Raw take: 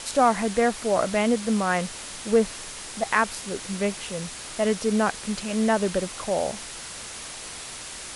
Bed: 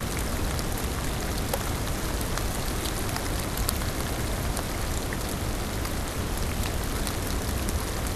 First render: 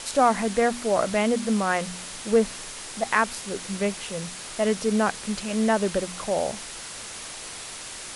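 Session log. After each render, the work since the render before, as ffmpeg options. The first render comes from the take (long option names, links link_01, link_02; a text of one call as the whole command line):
ffmpeg -i in.wav -af "bandreject=frequency=60:width_type=h:width=4,bandreject=frequency=120:width_type=h:width=4,bandreject=frequency=180:width_type=h:width=4,bandreject=frequency=240:width_type=h:width=4,bandreject=frequency=300:width_type=h:width=4" out.wav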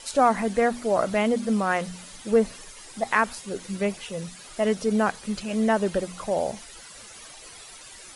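ffmpeg -i in.wav -af "afftdn=noise_reduction=12:noise_floor=-38" out.wav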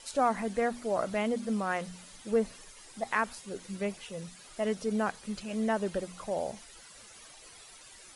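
ffmpeg -i in.wav -af "volume=-7.5dB" out.wav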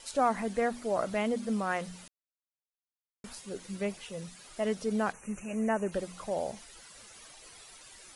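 ffmpeg -i in.wav -filter_complex "[0:a]asplit=3[link_01][link_02][link_03];[link_01]afade=type=out:start_time=5.12:duration=0.02[link_04];[link_02]asuperstop=centerf=4100:order=20:qfactor=1.4,afade=type=in:start_time=5.12:duration=0.02,afade=type=out:start_time=5.91:duration=0.02[link_05];[link_03]afade=type=in:start_time=5.91:duration=0.02[link_06];[link_04][link_05][link_06]amix=inputs=3:normalize=0,asplit=3[link_07][link_08][link_09];[link_07]atrim=end=2.08,asetpts=PTS-STARTPTS,afade=type=out:start_time=2.076:duration=0.004:curve=hsin[link_10];[link_08]atrim=start=2.08:end=3.24,asetpts=PTS-STARTPTS,volume=0[link_11];[link_09]atrim=start=3.24,asetpts=PTS-STARTPTS,afade=type=in:duration=0.004:curve=hsin[link_12];[link_10][link_11][link_12]concat=n=3:v=0:a=1" out.wav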